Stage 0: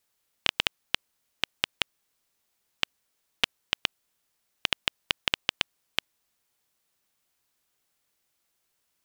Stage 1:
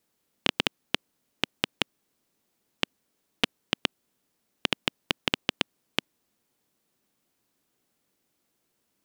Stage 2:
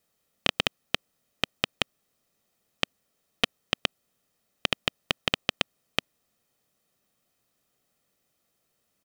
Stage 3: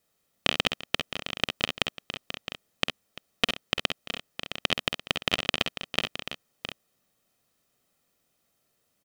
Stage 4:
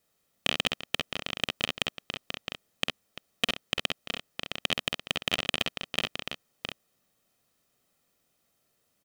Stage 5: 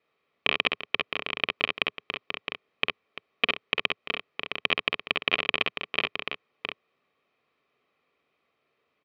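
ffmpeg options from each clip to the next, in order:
-af "equalizer=f=250:t=o:w=2.3:g=13.5,volume=-1dB"
-af "aecho=1:1:1.6:0.44"
-af "aecho=1:1:51|64|343|664|703|731:0.335|0.355|0.133|0.282|0.224|0.133"
-af "aeval=exprs='clip(val(0),-1,0.316)':c=same"
-af "highpass=100,equalizer=f=110:t=q:w=4:g=-7,equalizer=f=190:t=q:w=4:g=-7,equalizer=f=420:t=q:w=4:g=8,equalizer=f=1.1k:t=q:w=4:g=9,equalizer=f=2.3k:t=q:w=4:g=10,lowpass=f=3.7k:w=0.5412,lowpass=f=3.7k:w=1.3066"

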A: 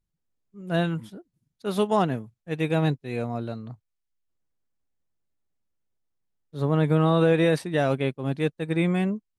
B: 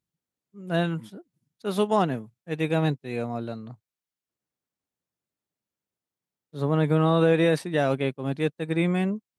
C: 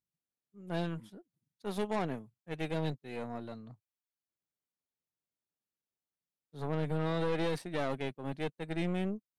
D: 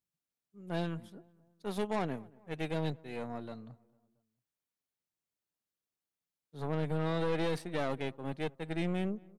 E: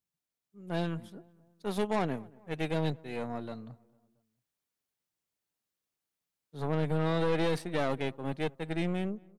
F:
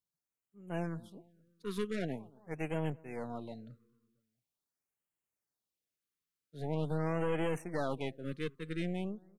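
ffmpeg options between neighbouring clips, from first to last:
-af "highpass=120"
-af "aeval=exprs='(tanh(12.6*val(0)+0.7)-tanh(0.7))/12.6':c=same,volume=-5.5dB"
-filter_complex "[0:a]asplit=2[a][b];[b]adelay=226,lowpass=f=1.6k:p=1,volume=-24dB,asplit=2[c][d];[d]adelay=226,lowpass=f=1.6k:p=1,volume=0.52,asplit=2[e][f];[f]adelay=226,lowpass=f=1.6k:p=1,volume=0.52[g];[a][c][e][g]amix=inputs=4:normalize=0"
-af "dynaudnorm=f=200:g=7:m=3.5dB"
-af "afftfilt=real='re*(1-between(b*sr/1024,680*pow(4800/680,0.5+0.5*sin(2*PI*0.44*pts/sr))/1.41,680*pow(4800/680,0.5+0.5*sin(2*PI*0.44*pts/sr))*1.41))':imag='im*(1-between(b*sr/1024,680*pow(4800/680,0.5+0.5*sin(2*PI*0.44*pts/sr))/1.41,680*pow(4800/680,0.5+0.5*sin(2*PI*0.44*pts/sr))*1.41))':win_size=1024:overlap=0.75,volume=-4.5dB"

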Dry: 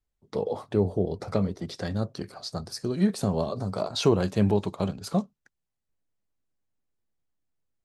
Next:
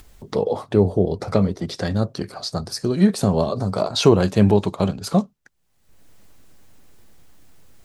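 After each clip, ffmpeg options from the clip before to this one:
-af "acompressor=mode=upward:threshold=-34dB:ratio=2.5,volume=7.5dB"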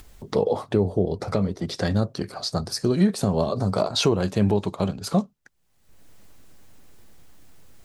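-af "alimiter=limit=-9.5dB:level=0:latency=1:release=416"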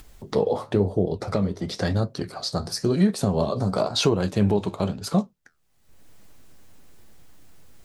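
-af "flanger=delay=6.2:depth=9.3:regen=-71:speed=0.96:shape=sinusoidal,volume=4dB"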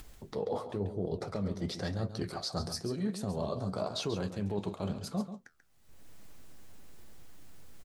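-af "areverse,acompressor=threshold=-29dB:ratio=6,areverse,aecho=1:1:137:0.299,volume=-2.5dB"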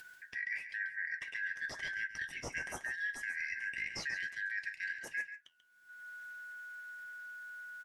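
-af "afftfilt=real='real(if(lt(b,272),68*(eq(floor(b/68),0)*3+eq(floor(b/68),1)*0+eq(floor(b/68),2)*1+eq(floor(b/68),3)*2)+mod(b,68),b),0)':imag='imag(if(lt(b,272),68*(eq(floor(b/68),0)*3+eq(floor(b/68),1)*0+eq(floor(b/68),2)*1+eq(floor(b/68),3)*2)+mod(b,68),b),0)':win_size=2048:overlap=0.75,volume=-5dB"

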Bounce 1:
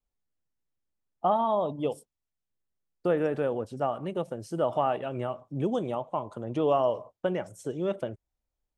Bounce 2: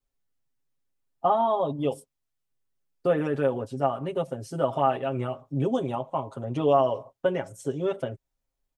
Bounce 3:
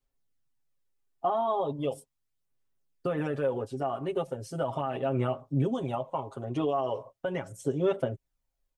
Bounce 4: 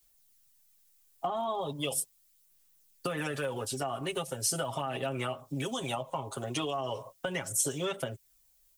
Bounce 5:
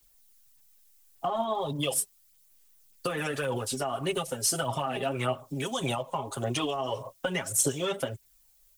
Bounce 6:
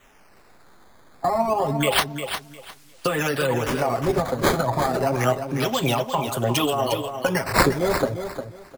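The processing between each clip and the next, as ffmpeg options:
-af "aecho=1:1:7.4:0.96"
-af "alimiter=limit=-18dB:level=0:latency=1:release=78,aphaser=in_gain=1:out_gain=1:delay=2.8:decay=0.35:speed=0.38:type=sinusoidal,volume=-2dB"
-filter_complex "[0:a]acrossover=split=210|820[a][b][c];[a]acompressor=threshold=-45dB:ratio=4[d];[b]acompressor=threshold=-42dB:ratio=4[e];[c]acompressor=threshold=-45dB:ratio=4[f];[d][e][f]amix=inputs=3:normalize=0,crystalizer=i=7.5:c=0,volume=3dB"
-af "aphaser=in_gain=1:out_gain=1:delay=5:decay=0.43:speed=1.7:type=sinusoidal,volume=2.5dB"
-filter_complex "[0:a]acrossover=split=830|1200[a][b][c];[c]acrusher=samples=9:mix=1:aa=0.000001:lfo=1:lforange=14.4:lforate=0.28[d];[a][b][d]amix=inputs=3:normalize=0,aecho=1:1:354|708|1062:0.376|0.0827|0.0182,volume=8dB"

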